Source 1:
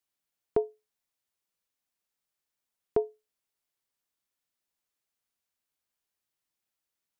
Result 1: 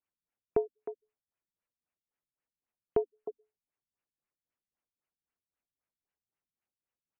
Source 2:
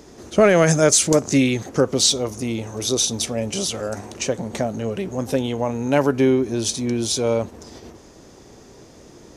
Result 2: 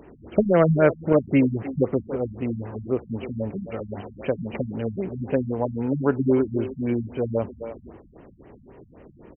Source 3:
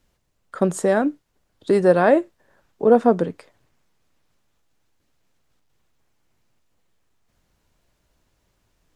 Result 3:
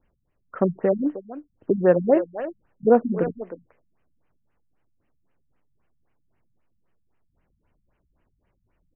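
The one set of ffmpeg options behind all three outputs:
ffmpeg -i in.wav -filter_complex "[0:a]asplit=2[link_01][link_02];[link_02]adelay=310,highpass=300,lowpass=3400,asoftclip=type=hard:threshold=-11.5dB,volume=-11dB[link_03];[link_01][link_03]amix=inputs=2:normalize=0,afftfilt=real='re*lt(b*sr/1024,210*pow(3200/210,0.5+0.5*sin(2*PI*3.8*pts/sr)))':imag='im*lt(b*sr/1024,210*pow(3200/210,0.5+0.5*sin(2*PI*3.8*pts/sr)))':win_size=1024:overlap=0.75,volume=-1.5dB" out.wav

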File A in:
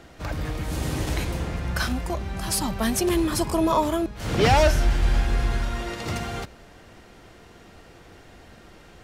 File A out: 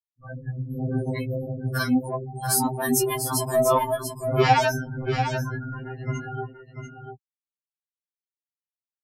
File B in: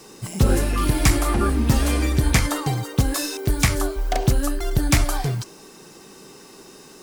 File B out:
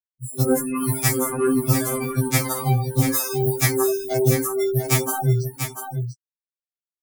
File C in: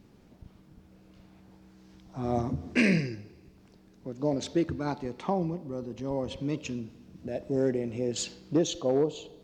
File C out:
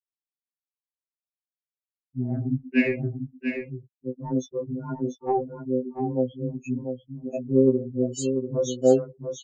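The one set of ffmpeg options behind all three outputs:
ffmpeg -i in.wav -filter_complex "[0:a]aemphasis=mode=production:type=50fm,afftfilt=real='re*gte(hypot(re,im),0.0794)':imag='im*gte(hypot(re,im),0.0794)':win_size=1024:overlap=0.75,acrossover=split=110|2300[link_01][link_02][link_03];[link_01]alimiter=limit=-20dB:level=0:latency=1:release=257[link_04];[link_02]dynaudnorm=framelen=280:gausssize=3:maxgain=10dB[link_05];[link_04][link_05][link_03]amix=inputs=3:normalize=0,asoftclip=type=tanh:threshold=-2.5dB,aecho=1:1:691:0.422,afftfilt=real='re*2.45*eq(mod(b,6),0)':imag='im*2.45*eq(mod(b,6),0)':win_size=2048:overlap=0.75,volume=-3dB" out.wav

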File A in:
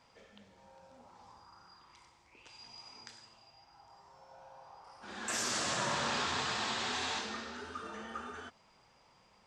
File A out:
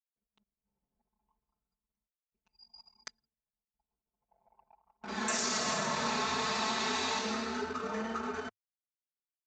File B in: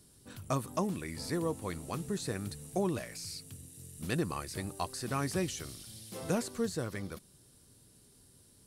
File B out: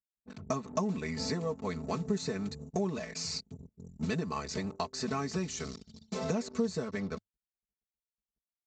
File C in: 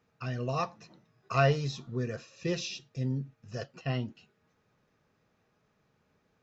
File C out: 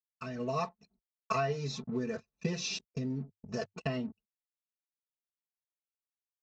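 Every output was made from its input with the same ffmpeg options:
ffmpeg -i in.wav -af "aresample=16000,aeval=exprs='sgn(val(0))*max(abs(val(0))-0.00168,0)':channel_layout=same,aresample=44100,bandreject=frequency=5100:width=22,anlmdn=0.00251,equalizer=frequency=100:width_type=o:width=0.33:gain=5,equalizer=frequency=1600:width_type=o:width=0.33:gain=-4,equalizer=frequency=3150:width_type=o:width=0.33:gain=-7,acompressor=threshold=-41dB:ratio=6,aecho=1:1:4.6:0.97,dynaudnorm=framelen=230:gausssize=3:maxgain=9dB,highpass=56" -ar 22050 -c:a libmp3lame -b:a 112k out.mp3

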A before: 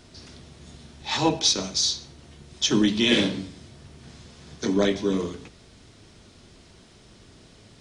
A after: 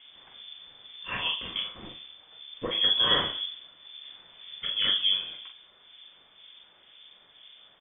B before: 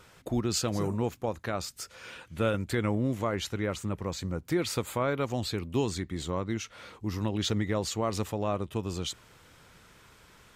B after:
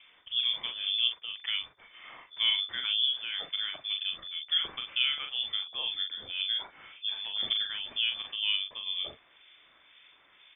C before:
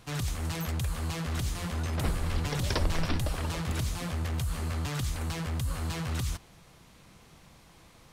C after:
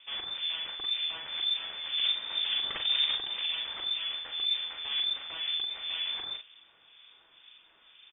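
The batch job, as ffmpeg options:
ffmpeg -i in.wav -filter_complex "[0:a]asplit=2[link_01][link_02];[link_02]adelay=41,volume=-5dB[link_03];[link_01][link_03]amix=inputs=2:normalize=0,acrossover=split=1800[link_04][link_05];[link_04]aeval=exprs='val(0)*(1-0.7/2+0.7/2*cos(2*PI*2*n/s))':channel_layout=same[link_06];[link_05]aeval=exprs='val(0)*(1-0.7/2-0.7/2*cos(2*PI*2*n/s))':channel_layout=same[link_07];[link_06][link_07]amix=inputs=2:normalize=0,lowpass=frequency=3100:width_type=q:width=0.5098,lowpass=frequency=3100:width_type=q:width=0.6013,lowpass=frequency=3100:width_type=q:width=0.9,lowpass=frequency=3100:width_type=q:width=2.563,afreqshift=-3600" out.wav

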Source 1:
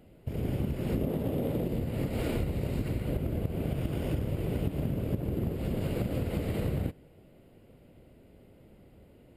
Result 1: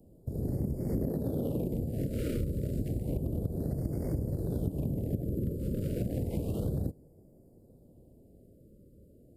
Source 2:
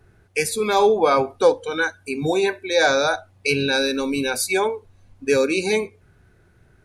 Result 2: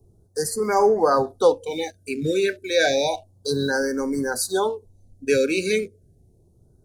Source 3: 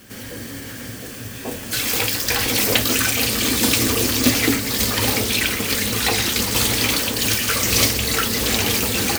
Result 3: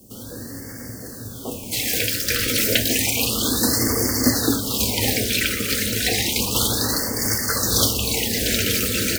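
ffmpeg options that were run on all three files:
ffmpeg -i in.wav -filter_complex "[0:a]acrossover=split=170|710|5400[link_01][link_02][link_03][link_04];[link_03]aeval=exprs='sgn(val(0))*max(abs(val(0))-0.00531,0)':channel_layout=same[link_05];[link_01][link_02][link_05][link_04]amix=inputs=4:normalize=0,afftfilt=real='re*(1-between(b*sr/1024,850*pow(3200/850,0.5+0.5*sin(2*PI*0.31*pts/sr))/1.41,850*pow(3200/850,0.5+0.5*sin(2*PI*0.31*pts/sr))*1.41))':imag='im*(1-between(b*sr/1024,850*pow(3200/850,0.5+0.5*sin(2*PI*0.31*pts/sr))/1.41,850*pow(3200/850,0.5+0.5*sin(2*PI*0.31*pts/sr))*1.41))':win_size=1024:overlap=0.75,volume=-1dB" out.wav

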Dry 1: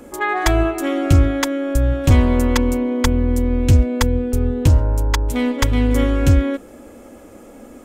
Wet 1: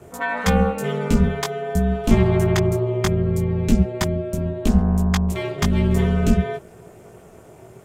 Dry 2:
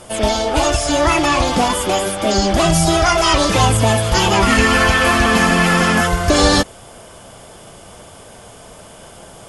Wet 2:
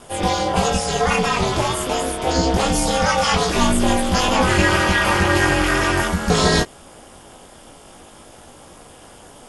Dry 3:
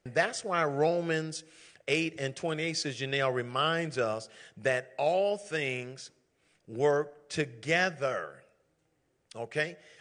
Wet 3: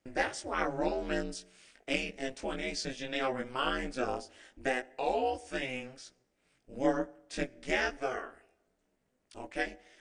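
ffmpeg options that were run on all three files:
ffmpeg -i in.wav -af "flanger=delay=18:depth=2.2:speed=0.21,aeval=exprs='val(0)*sin(2*PI*130*n/s)':channel_layout=same,volume=2dB" out.wav

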